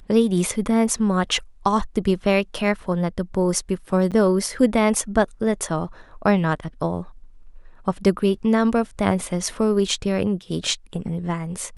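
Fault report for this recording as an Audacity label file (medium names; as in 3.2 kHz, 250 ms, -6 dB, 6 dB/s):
4.110000	4.120000	dropout 7.8 ms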